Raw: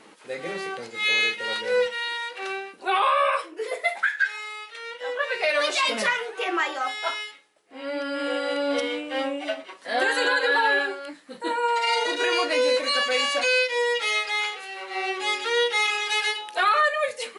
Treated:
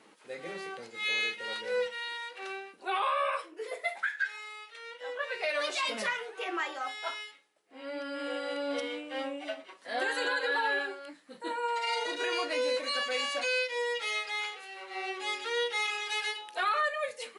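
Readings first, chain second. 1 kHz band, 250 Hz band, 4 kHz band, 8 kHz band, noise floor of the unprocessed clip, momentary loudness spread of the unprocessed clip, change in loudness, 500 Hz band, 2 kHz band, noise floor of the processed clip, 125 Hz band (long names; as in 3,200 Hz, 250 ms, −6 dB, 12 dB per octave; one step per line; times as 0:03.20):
−8.5 dB, −8.5 dB, −8.5 dB, −8.5 dB, −49 dBFS, 12 LU, −8.5 dB, −8.5 dB, −8.5 dB, −58 dBFS, can't be measured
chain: high-pass filter 88 Hz
level −8.5 dB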